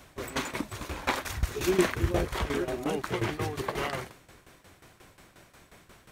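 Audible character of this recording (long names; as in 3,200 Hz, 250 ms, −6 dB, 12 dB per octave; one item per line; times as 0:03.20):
tremolo saw down 5.6 Hz, depth 80%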